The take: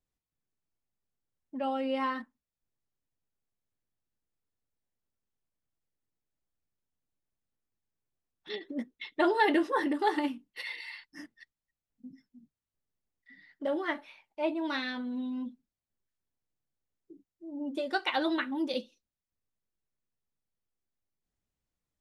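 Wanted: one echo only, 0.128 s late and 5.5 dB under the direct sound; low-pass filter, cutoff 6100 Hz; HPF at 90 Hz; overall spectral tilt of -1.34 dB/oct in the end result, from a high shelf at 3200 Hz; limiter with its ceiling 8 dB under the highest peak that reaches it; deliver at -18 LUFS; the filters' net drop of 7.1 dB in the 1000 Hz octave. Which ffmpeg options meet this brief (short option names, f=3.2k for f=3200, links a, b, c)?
-af "highpass=90,lowpass=6.1k,equalizer=f=1k:t=o:g=-8.5,highshelf=f=3.2k:g=-6,alimiter=level_in=2dB:limit=-24dB:level=0:latency=1,volume=-2dB,aecho=1:1:128:0.531,volume=17.5dB"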